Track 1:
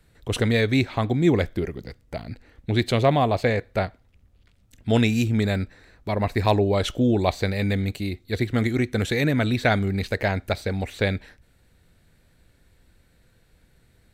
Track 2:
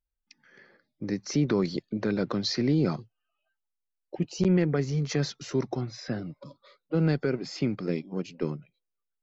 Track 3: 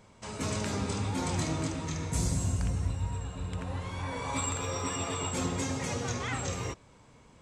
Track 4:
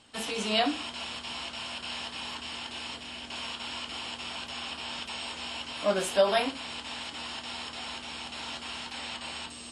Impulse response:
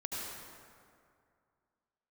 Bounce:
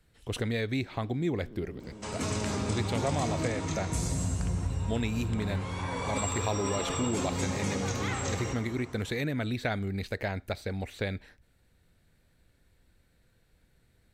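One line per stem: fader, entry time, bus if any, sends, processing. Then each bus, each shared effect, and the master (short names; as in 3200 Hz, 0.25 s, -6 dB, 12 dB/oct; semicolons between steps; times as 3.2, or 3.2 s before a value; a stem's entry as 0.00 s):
-7.0 dB, 0.00 s, no send, dry
-14.5 dB, 0.00 s, no send, time blur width 0.806 s; LPF 1100 Hz
0.0 dB, 1.80 s, send -6 dB, dry
-15.5 dB, 0.00 s, no send, passive tone stack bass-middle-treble 5-5-5; auto duck -14 dB, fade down 0.50 s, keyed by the first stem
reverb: on, RT60 2.3 s, pre-delay 68 ms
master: compressor 2:1, threshold -29 dBFS, peak gain reduction 5.5 dB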